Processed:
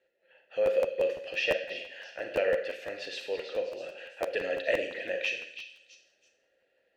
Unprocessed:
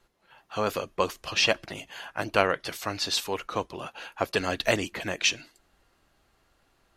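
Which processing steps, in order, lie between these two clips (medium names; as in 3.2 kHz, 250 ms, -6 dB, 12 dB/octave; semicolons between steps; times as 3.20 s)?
in parallel at +0.5 dB: peak limiter -16 dBFS, peak gain reduction 11.5 dB; on the sum: vowel filter e; repeats whose band climbs or falls 327 ms, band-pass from 3.9 kHz, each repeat 0.7 oct, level -7.5 dB; Schroeder reverb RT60 0.66 s, combs from 32 ms, DRR 4.5 dB; crackling interface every 0.17 s, samples 512, repeat, from 0.65 s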